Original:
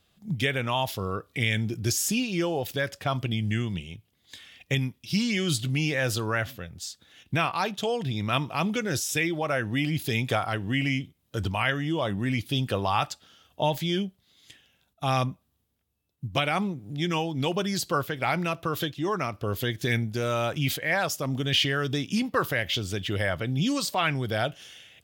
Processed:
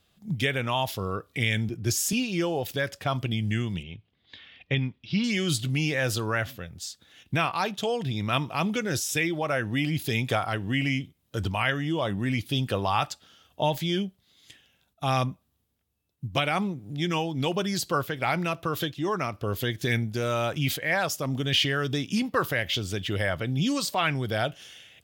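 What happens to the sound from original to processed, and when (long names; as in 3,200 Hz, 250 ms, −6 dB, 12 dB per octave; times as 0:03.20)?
0:01.69–0:02.13: multiband upward and downward expander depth 40%
0:03.83–0:05.24: inverse Chebyshev low-pass filter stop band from 11,000 Hz, stop band 60 dB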